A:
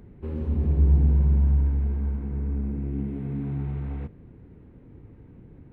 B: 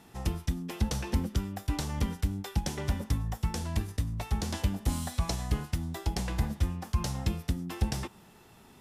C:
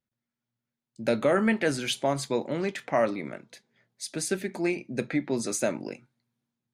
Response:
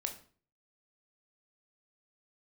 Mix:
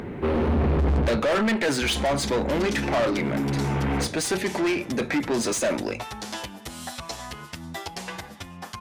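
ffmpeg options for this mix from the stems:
-filter_complex "[0:a]asoftclip=type=hard:threshold=-15dB,volume=-2.5dB,asplit=3[link_01][link_02][link_03];[link_01]atrim=end=1.17,asetpts=PTS-STARTPTS,afade=type=out:start_time=1.166:duration=0.004:curve=hsin[link_04];[link_02]atrim=start=1.17:end=1.82,asetpts=PTS-STARTPTS,volume=0[link_05];[link_03]atrim=start=1.82,asetpts=PTS-STARTPTS,afade=type=in:duration=0.004:curve=hsin[link_06];[link_04][link_05][link_06]concat=n=3:v=0:a=1,asplit=2[link_07][link_08];[link_08]volume=-12dB[link_09];[1:a]acompressor=threshold=-32dB:ratio=6,asplit=2[link_10][link_11];[link_11]adelay=8.1,afreqshift=0.31[link_12];[link_10][link_12]amix=inputs=2:normalize=1,adelay=1800,volume=-13dB[link_13];[2:a]lowshelf=frequency=370:gain=6,volume=-13.5dB,asplit=3[link_14][link_15][link_16];[link_15]volume=-15.5dB[link_17];[link_16]apad=whole_len=252349[link_18];[link_07][link_18]sidechaincompress=threshold=-48dB:ratio=8:attack=8.1:release=673[link_19];[3:a]atrim=start_sample=2205[link_20];[link_09][link_17]amix=inputs=2:normalize=0[link_21];[link_21][link_20]afir=irnorm=-1:irlink=0[link_22];[link_19][link_13][link_14][link_22]amix=inputs=4:normalize=0,asplit=2[link_23][link_24];[link_24]highpass=frequency=720:poles=1,volume=33dB,asoftclip=type=tanh:threshold=-14.5dB[link_25];[link_23][link_25]amix=inputs=2:normalize=0,lowpass=frequency=4800:poles=1,volume=-6dB"

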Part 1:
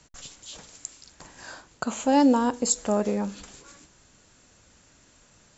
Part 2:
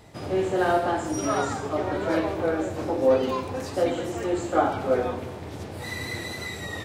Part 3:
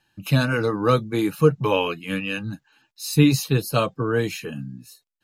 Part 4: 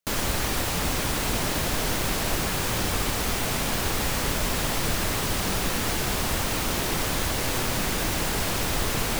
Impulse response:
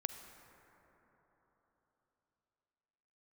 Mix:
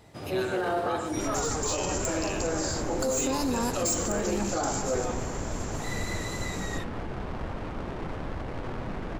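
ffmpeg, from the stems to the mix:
-filter_complex "[0:a]acompressor=threshold=-24dB:ratio=6,aexciter=amount=4.4:drive=7.8:freq=4300,asoftclip=type=tanh:threshold=-20.5dB,adelay=1200,volume=-3.5dB,asplit=2[link_01][link_02];[link_02]volume=-4.5dB[link_03];[1:a]volume=-6dB,asplit=2[link_04][link_05];[link_05]volume=-10dB[link_06];[2:a]highpass=400,volume=-11dB,asplit=2[link_07][link_08];[link_08]volume=-7dB[link_09];[3:a]adynamicsmooth=sensitivity=1:basefreq=780,adelay=1100,volume=-5.5dB[link_10];[4:a]atrim=start_sample=2205[link_11];[link_03][link_06]amix=inputs=2:normalize=0[link_12];[link_12][link_11]afir=irnorm=-1:irlink=0[link_13];[link_09]aecho=0:1:121:1[link_14];[link_01][link_04][link_07][link_10][link_13][link_14]amix=inputs=6:normalize=0,alimiter=limit=-19.5dB:level=0:latency=1:release=27"

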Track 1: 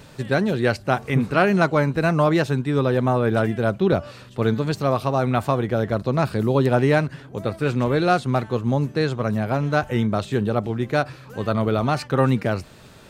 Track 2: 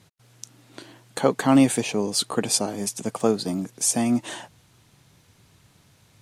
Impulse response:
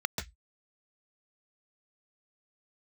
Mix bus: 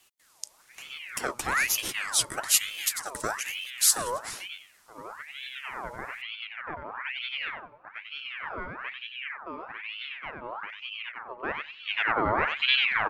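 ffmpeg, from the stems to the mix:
-filter_complex "[0:a]lowpass=1100,adelay=500,volume=-2.5dB,afade=type=in:start_time=11.34:duration=0.4:silence=0.237137,asplit=2[link_01][link_02];[link_02]volume=-4.5dB[link_03];[1:a]bass=frequency=250:gain=-2,treble=frequency=4000:gain=12,acrossover=split=370|3000[link_04][link_05][link_06];[link_05]acompressor=threshold=-21dB:ratio=6[link_07];[link_04][link_07][link_06]amix=inputs=3:normalize=0,volume=-6.5dB,asplit=2[link_08][link_09];[link_09]apad=whole_len=599520[link_10];[link_01][link_10]sidechaincompress=threshold=-41dB:ratio=8:attack=8.8:release=918[link_11];[link_03]aecho=0:1:94|188|282|376:1|0.25|0.0625|0.0156[link_12];[link_11][link_08][link_12]amix=inputs=3:normalize=0,aeval=exprs='val(0)*sin(2*PI*1800*n/s+1800*0.6/1.1*sin(2*PI*1.1*n/s))':channel_layout=same"

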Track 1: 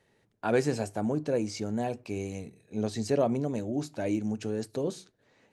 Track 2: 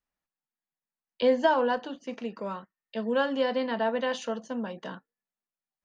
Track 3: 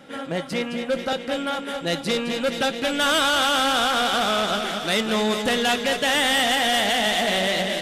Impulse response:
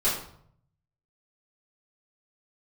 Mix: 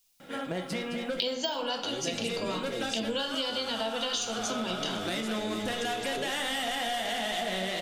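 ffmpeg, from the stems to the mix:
-filter_complex "[0:a]equalizer=frequency=360:width_type=o:width=1.2:gain=13,acrossover=split=120[link_01][link_02];[link_02]acompressor=threshold=-31dB:ratio=4[link_03];[link_01][link_03]amix=inputs=2:normalize=0,crystalizer=i=7.5:c=0,adelay=1400,volume=-0.5dB[link_04];[1:a]deesser=0.9,aexciter=amount=10.3:drive=3.3:freq=2600,volume=2dB,asplit=2[link_05][link_06];[link_06]volume=-14dB[link_07];[2:a]adelay=200,volume=-3.5dB,asplit=2[link_08][link_09];[link_09]volume=-21dB[link_10];[link_04][link_08]amix=inputs=2:normalize=0,asoftclip=type=hard:threshold=-16.5dB,acompressor=threshold=-29dB:ratio=6,volume=0dB[link_11];[3:a]atrim=start_sample=2205[link_12];[link_07][link_10]amix=inputs=2:normalize=0[link_13];[link_13][link_12]afir=irnorm=-1:irlink=0[link_14];[link_05][link_11][link_14]amix=inputs=3:normalize=0,acompressor=threshold=-28dB:ratio=12"

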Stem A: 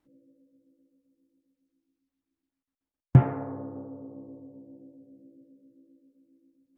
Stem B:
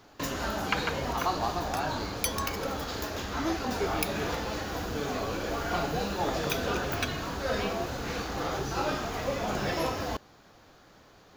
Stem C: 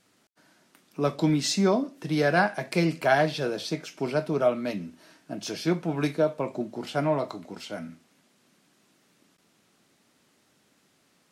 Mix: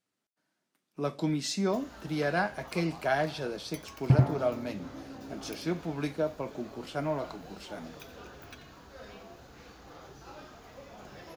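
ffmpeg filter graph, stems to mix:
ffmpeg -i stem1.wav -i stem2.wav -i stem3.wav -filter_complex "[0:a]adelay=950,volume=-2dB,asplit=2[link_01][link_02];[link_02]volume=-4.5dB[link_03];[1:a]adelay=1500,volume=-18dB,asplit=2[link_04][link_05];[link_05]volume=-12dB[link_06];[2:a]agate=range=-13dB:threshold=-55dB:ratio=16:detection=peak,volume=-6.5dB,asplit=2[link_07][link_08];[link_08]apad=whole_len=340797[link_09];[link_01][link_09]sidechaincompress=threshold=-33dB:ratio=8:attack=16:release=1160[link_10];[link_03][link_06]amix=inputs=2:normalize=0,aecho=0:1:87:1[link_11];[link_10][link_04][link_07][link_11]amix=inputs=4:normalize=0" out.wav

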